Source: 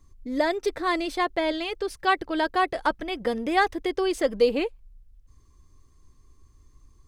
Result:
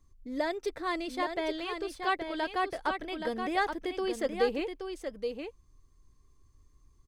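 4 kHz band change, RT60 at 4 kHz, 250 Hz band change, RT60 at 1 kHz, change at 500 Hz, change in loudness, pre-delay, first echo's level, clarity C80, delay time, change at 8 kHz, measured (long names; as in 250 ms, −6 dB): −6.5 dB, no reverb audible, −6.5 dB, no reverb audible, −6.5 dB, −7.5 dB, no reverb audible, −6.5 dB, no reverb audible, 824 ms, −6.5 dB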